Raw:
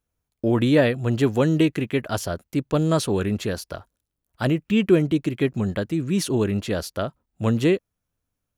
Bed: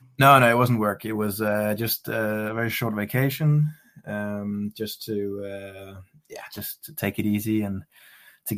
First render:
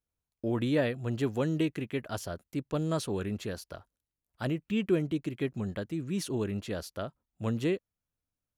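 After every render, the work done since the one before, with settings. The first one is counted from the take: gain -10 dB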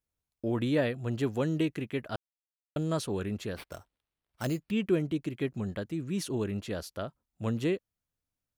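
2.16–2.76 mute; 3.56–4.71 sample-rate reducer 6900 Hz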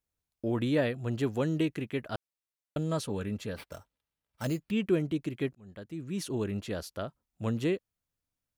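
2.78–4.51 notch comb 360 Hz; 5.55–6.62 fade in equal-power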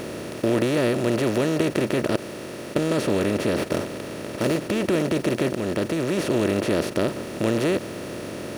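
per-bin compression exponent 0.2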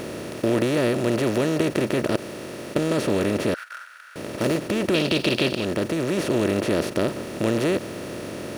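3.54–4.16 ladder high-pass 1400 Hz, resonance 85%; 4.94–5.65 band shelf 3500 Hz +12 dB 1.2 oct

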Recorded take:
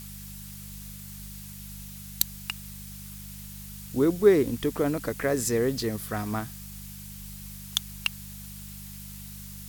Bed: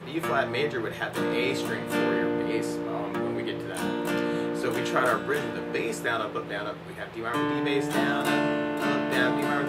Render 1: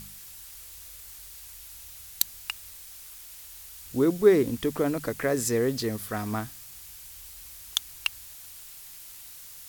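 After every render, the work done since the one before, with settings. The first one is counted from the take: de-hum 50 Hz, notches 4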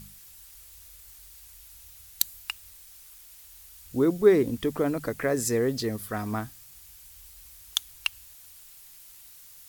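denoiser 6 dB, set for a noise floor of -46 dBFS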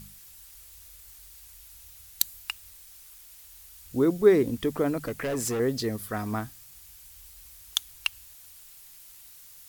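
5.06–5.6 hard clip -26 dBFS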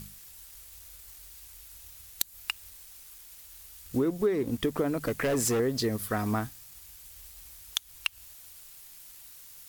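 compressor 6:1, threshold -28 dBFS, peak gain reduction 14.5 dB; sample leveller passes 1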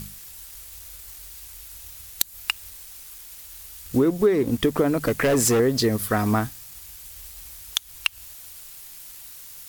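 gain +7.5 dB; limiter -3 dBFS, peak gain reduction 1.5 dB

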